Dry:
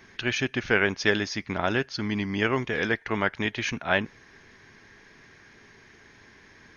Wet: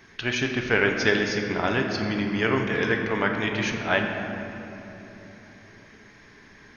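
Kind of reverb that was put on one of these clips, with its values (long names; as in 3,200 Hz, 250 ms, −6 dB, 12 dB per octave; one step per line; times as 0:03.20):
rectangular room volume 190 cubic metres, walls hard, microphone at 0.36 metres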